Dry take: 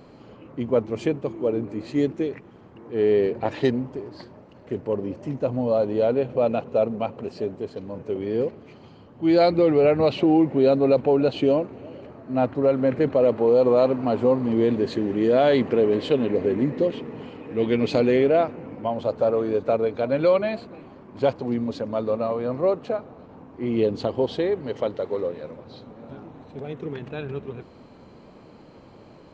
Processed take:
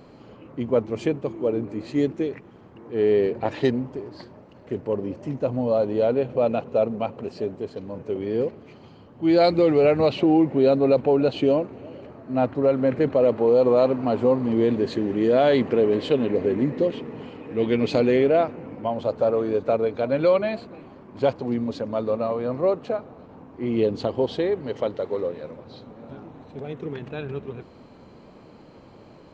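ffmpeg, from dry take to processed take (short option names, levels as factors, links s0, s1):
-filter_complex "[0:a]asettb=1/sr,asplit=3[s0][s1][s2];[s0]atrim=end=9.444[s3];[s1]atrim=start=9.44:end=10.07,asetpts=PTS-STARTPTS,afade=t=in:d=0.004:c=qsin,afade=t=out:st=0.626:d=0.004:c=qsin,highshelf=f=4500:g=8[s4];[s2]atrim=start=10.066[s5];[s3][s4]acrossfade=d=0.004:c1=hsin:c2=qsin[s6];[s6][s5]acrossfade=d=0.004:c1=qsin:c2=hsin"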